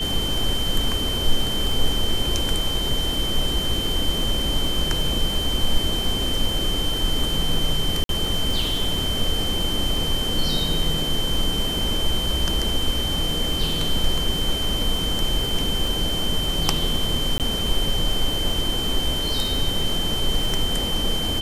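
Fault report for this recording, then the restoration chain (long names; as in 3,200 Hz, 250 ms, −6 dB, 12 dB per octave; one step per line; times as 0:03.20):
surface crackle 45 per second −27 dBFS
whistle 3,100 Hz −25 dBFS
0:08.04–0:08.09: drop-out 52 ms
0:17.38–0:17.40: drop-out 18 ms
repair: click removal
notch filter 3,100 Hz, Q 30
repair the gap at 0:08.04, 52 ms
repair the gap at 0:17.38, 18 ms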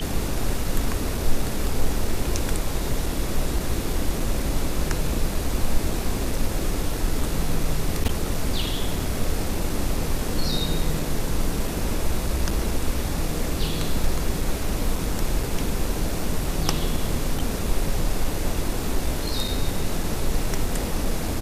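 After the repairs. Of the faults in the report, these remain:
none of them is left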